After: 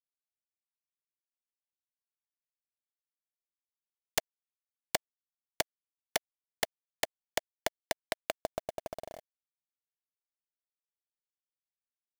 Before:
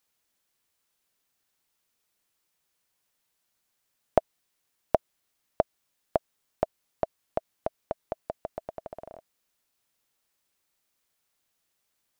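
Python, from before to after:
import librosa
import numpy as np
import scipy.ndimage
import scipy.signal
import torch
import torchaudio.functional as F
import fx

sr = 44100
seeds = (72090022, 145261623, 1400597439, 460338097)

y = (np.mod(10.0 ** (18.5 / 20.0) * x + 1.0, 2.0) - 1.0) / 10.0 ** (18.5 / 20.0)
y = fx.quant_companded(y, sr, bits=4)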